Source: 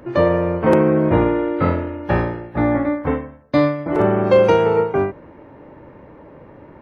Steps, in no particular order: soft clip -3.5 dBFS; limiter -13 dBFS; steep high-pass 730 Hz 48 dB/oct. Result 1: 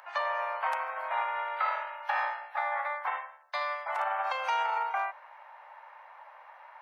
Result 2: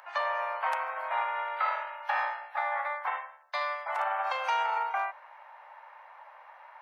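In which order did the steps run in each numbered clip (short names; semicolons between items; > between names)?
limiter > soft clip > steep high-pass; soft clip > limiter > steep high-pass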